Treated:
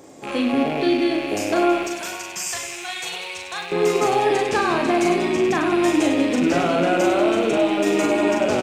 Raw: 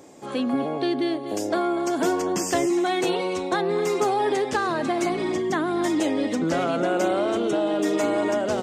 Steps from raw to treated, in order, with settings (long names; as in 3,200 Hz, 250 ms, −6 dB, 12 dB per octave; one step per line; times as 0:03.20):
loose part that buzzes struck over −41 dBFS, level −24 dBFS
0:01.83–0:03.72: guitar amp tone stack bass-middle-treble 10-0-10
on a send: reverse bouncing-ball delay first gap 40 ms, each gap 1.5×, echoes 5
on the sum: level +2 dB